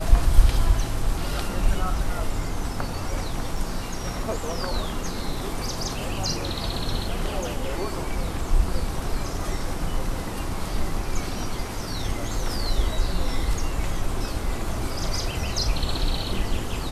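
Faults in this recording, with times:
0:03.57: drop-out 3.3 ms

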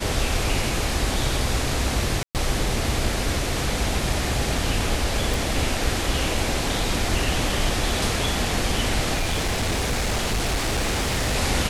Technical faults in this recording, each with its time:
0:02.23–0:02.35: drop-out 118 ms
0:05.34: click
0:09.14–0:11.36: clipping −19.5 dBFS

